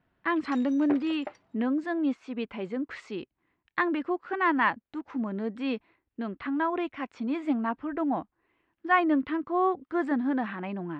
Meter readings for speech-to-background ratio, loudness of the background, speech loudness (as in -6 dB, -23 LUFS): 12.5 dB, -42.0 LUFS, -29.5 LUFS